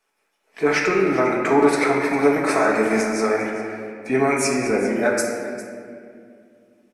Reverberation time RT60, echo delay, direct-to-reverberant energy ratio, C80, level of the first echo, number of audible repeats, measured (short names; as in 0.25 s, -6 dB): 2.3 s, 0.402 s, -2.5 dB, 3.5 dB, -15.5 dB, 1